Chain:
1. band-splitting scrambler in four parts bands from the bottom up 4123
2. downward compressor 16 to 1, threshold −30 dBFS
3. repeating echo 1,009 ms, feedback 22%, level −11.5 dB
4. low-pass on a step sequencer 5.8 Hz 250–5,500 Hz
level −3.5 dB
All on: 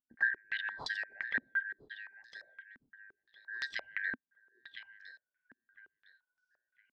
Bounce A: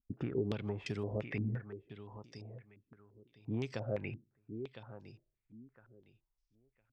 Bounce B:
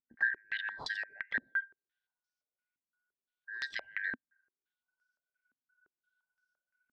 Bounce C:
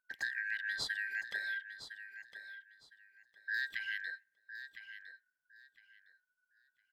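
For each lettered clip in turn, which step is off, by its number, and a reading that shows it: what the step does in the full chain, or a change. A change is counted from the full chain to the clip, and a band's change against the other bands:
1, 2 kHz band −27.0 dB
3, change in momentary loudness spread −8 LU
4, change in crest factor −3.0 dB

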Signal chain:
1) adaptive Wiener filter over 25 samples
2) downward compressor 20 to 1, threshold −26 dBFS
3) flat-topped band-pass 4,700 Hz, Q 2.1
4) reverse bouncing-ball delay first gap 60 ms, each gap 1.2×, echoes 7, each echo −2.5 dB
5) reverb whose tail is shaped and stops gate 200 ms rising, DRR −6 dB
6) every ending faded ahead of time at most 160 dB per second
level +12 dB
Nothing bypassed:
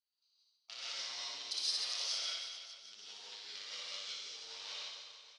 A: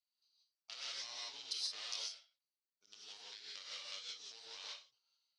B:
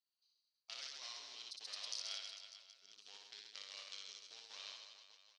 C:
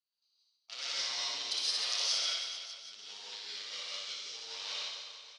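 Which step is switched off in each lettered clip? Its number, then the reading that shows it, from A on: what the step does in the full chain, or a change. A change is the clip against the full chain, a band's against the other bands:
4, change in integrated loudness −4.5 LU
5, 4 kHz band −1.5 dB
2, average gain reduction 4.5 dB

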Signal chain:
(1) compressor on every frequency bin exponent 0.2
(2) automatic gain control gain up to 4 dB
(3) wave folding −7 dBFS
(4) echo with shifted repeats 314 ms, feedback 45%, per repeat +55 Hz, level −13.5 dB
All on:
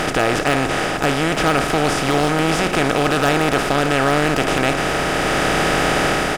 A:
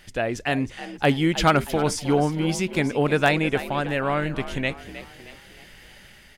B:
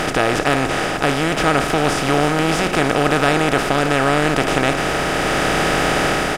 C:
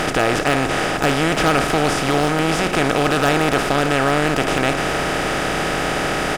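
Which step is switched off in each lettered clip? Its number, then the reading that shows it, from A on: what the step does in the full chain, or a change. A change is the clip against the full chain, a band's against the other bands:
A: 1, 125 Hz band +5.0 dB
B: 3, distortion level −16 dB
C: 2, change in momentary loudness spread +2 LU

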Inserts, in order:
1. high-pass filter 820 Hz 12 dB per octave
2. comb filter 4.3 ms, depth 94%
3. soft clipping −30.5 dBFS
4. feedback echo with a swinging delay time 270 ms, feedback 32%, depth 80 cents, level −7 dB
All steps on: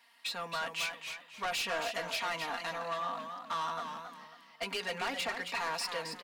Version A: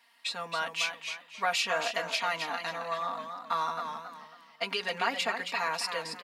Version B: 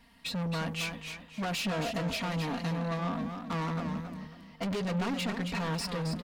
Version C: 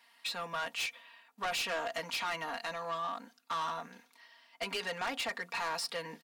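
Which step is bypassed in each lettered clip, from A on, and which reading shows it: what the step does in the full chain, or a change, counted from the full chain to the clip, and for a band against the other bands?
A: 3, distortion level −9 dB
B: 1, 125 Hz band +22.0 dB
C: 4, change in momentary loudness spread −2 LU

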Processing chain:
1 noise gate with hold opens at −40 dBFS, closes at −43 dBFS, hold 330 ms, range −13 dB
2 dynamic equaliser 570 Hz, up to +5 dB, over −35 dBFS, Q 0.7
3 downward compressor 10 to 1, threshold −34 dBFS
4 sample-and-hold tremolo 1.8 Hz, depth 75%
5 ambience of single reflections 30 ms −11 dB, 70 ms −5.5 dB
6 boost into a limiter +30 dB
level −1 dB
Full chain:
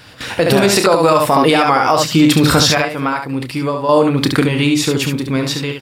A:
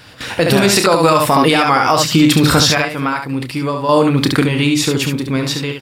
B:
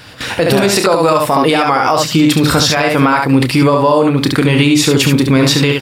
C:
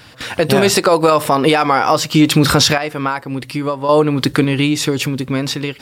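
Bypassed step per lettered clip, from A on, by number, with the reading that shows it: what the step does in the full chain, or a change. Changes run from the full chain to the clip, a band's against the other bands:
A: 2, 500 Hz band −2.5 dB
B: 4, change in momentary loudness spread −7 LU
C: 5, change in integrated loudness −1.0 LU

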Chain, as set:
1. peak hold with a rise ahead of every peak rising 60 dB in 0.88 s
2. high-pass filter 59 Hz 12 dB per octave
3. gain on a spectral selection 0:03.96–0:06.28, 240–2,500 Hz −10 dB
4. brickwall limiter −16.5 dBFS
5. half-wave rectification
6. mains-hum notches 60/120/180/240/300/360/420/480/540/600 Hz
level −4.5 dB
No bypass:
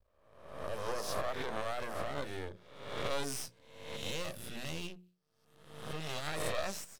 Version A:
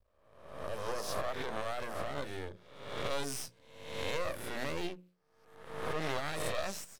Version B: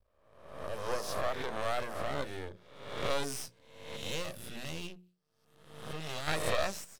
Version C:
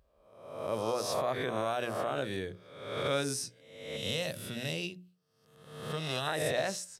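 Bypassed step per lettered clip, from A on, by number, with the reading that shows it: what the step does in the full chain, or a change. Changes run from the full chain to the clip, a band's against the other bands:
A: 3, change in integrated loudness +1.0 LU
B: 4, change in crest factor +5.0 dB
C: 5, change in crest factor −1.5 dB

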